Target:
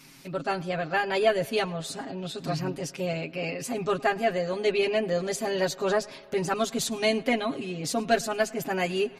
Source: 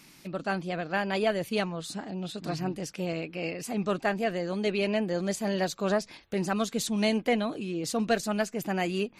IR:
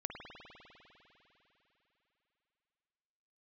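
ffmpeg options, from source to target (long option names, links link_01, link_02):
-filter_complex "[0:a]aecho=1:1:7.4:0.97,asplit=2[link_01][link_02];[1:a]atrim=start_sample=2205,adelay=106[link_03];[link_02][link_03]afir=irnorm=-1:irlink=0,volume=-20.5dB[link_04];[link_01][link_04]amix=inputs=2:normalize=0"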